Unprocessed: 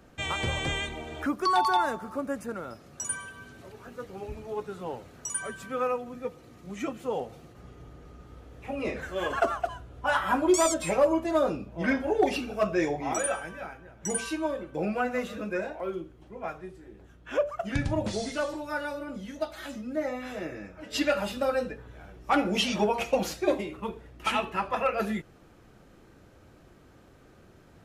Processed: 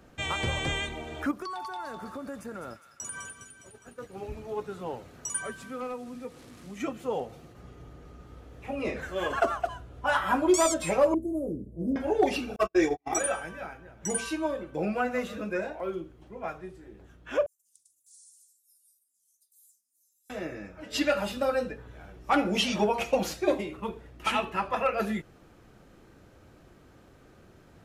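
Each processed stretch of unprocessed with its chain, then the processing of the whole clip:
0:01.31–0:04.17: downward expander −41 dBFS + downward compressor 8 to 1, threshold −34 dBFS + delay with a high-pass on its return 205 ms, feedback 54%, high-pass 1,800 Hz, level −7 dB
0:05.52–0:06.80: linear delta modulator 64 kbit/s, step −46 dBFS + parametric band 250 Hz +6.5 dB 0.26 octaves + downward compressor 1.5 to 1, threshold −45 dBFS
0:11.14–0:11.96: Chebyshev band-stop filter 420–9,600 Hz, order 3 + linearly interpolated sample-rate reduction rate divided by 2×
0:12.56–0:13.21: high-shelf EQ 10,000 Hz +7 dB + comb filter 2.6 ms, depth 70% + noise gate −27 dBFS, range −49 dB
0:17.46–0:20.30: inverse Chebyshev high-pass filter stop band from 2,200 Hz, stop band 70 dB + highs frequency-modulated by the lows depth 0.25 ms
whole clip: no processing

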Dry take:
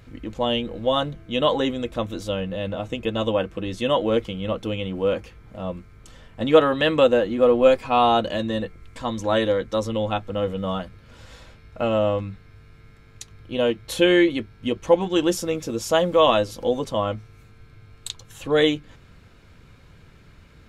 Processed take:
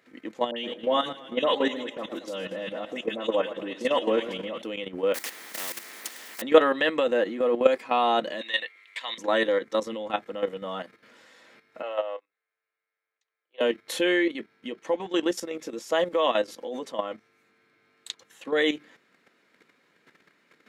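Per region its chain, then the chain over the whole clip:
0:00.51–0:04.62: all-pass dispersion highs, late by 67 ms, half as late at 1,900 Hz + feedback echo with a swinging delay time 114 ms, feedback 60%, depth 79 cents, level −12.5 dB
0:05.14–0:06.42: one scale factor per block 5 bits + high-shelf EQ 2,900 Hz +8 dB + every bin compressed towards the loudest bin 4 to 1
0:08.41–0:09.18: high-pass filter 820 Hz + flat-topped bell 2,800 Hz +11 dB 1.3 octaves
0:11.82–0:13.61: high-pass filter 480 Hz 24 dB per octave + high-frequency loss of the air 110 metres + expander for the loud parts 2.5 to 1, over −40 dBFS
0:14.17–0:18.60: high-shelf EQ 8,100 Hz −3.5 dB + amplitude tremolo 8.1 Hz, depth 45%
whole clip: high-pass filter 240 Hz 24 dB per octave; parametric band 1,900 Hz +8.5 dB 0.34 octaves; output level in coarse steps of 11 dB

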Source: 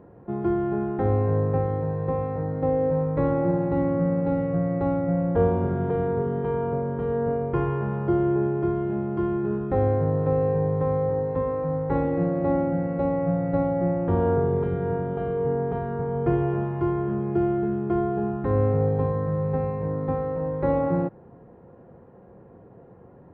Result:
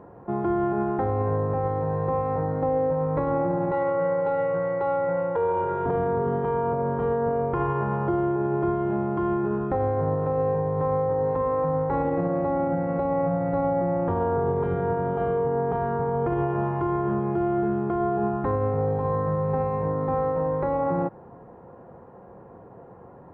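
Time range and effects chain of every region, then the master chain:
0:03.71–0:05.86: high-pass filter 100 Hz + low-shelf EQ 360 Hz −12 dB + comb filter 2.1 ms, depth 89%
whole clip: parametric band 970 Hz +9 dB 1.5 octaves; brickwall limiter −17 dBFS

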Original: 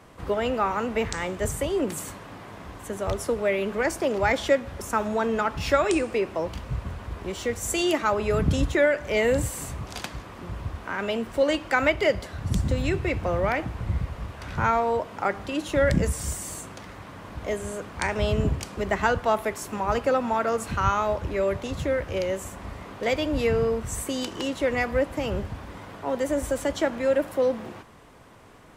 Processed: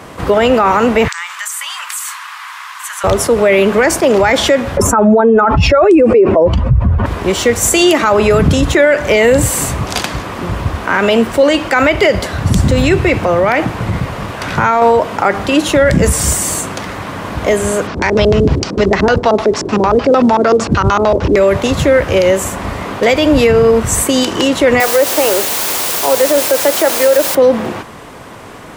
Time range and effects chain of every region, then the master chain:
0:01.08–0:03.04: Butterworth high-pass 1,000 Hz 48 dB per octave + downward compressor, threshold −37 dBFS
0:04.77–0:07.06: expanding power law on the bin magnitudes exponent 1.8 + envelope flattener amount 50%
0:13.14–0:14.82: parametric band 61 Hz −13.5 dB 0.86 octaves + downward compressor, threshold −26 dBFS
0:17.87–0:21.36: auto-filter low-pass square 6.6 Hz 380–5,300 Hz + log-companded quantiser 8 bits + high-frequency loss of the air 54 metres
0:24.80–0:27.35: high-pass filter 360 Hz 24 dB per octave + high-shelf EQ 2,400 Hz −10 dB + bit-depth reduction 6 bits, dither triangular
whole clip: low-shelf EQ 71 Hz −9.5 dB; boost into a limiter +20 dB; level that may rise only so fast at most 460 dB per second; level −1 dB

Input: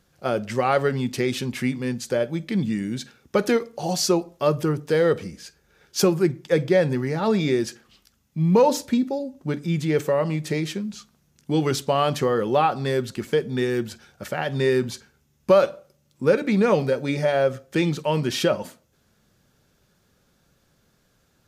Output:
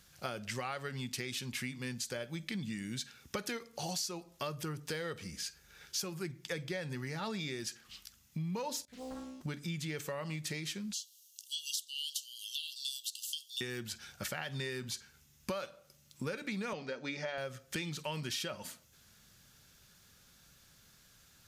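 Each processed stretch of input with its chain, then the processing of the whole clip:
0:08.85–0:09.41: low-shelf EQ 170 Hz +6 dB + tuned comb filter 65 Hz, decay 1.3 s, mix 100% + highs frequency-modulated by the lows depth 0.96 ms
0:10.93–0:13.61: linear-phase brick-wall high-pass 2,700 Hz + high-shelf EQ 5,500 Hz +7 dB
0:16.73–0:17.38: Chebyshev band-pass filter 190–6,400 Hz, order 3 + high-shelf EQ 5,200 Hz −9 dB
whole clip: guitar amp tone stack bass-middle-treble 5-5-5; downward compressor 6 to 1, threshold −50 dBFS; level +13 dB

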